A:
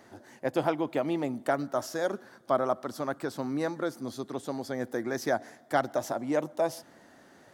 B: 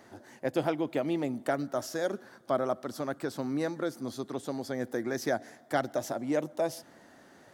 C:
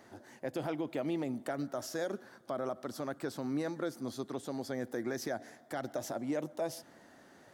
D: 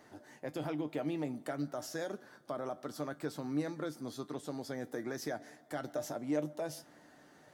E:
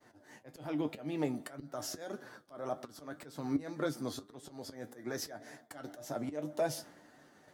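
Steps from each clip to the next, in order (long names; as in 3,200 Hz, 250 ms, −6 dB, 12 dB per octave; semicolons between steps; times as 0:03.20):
dynamic equaliser 1,000 Hz, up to −6 dB, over −41 dBFS, Q 1.4
brickwall limiter −23.5 dBFS, peak gain reduction 9.5 dB; level −2.5 dB
tuned comb filter 150 Hz, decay 0.15 s, harmonics all, mix 70%; level +4 dB
downward expander −54 dBFS; volume swells 292 ms; flanger 1.8 Hz, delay 7.1 ms, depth 4.3 ms, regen +56%; level +9.5 dB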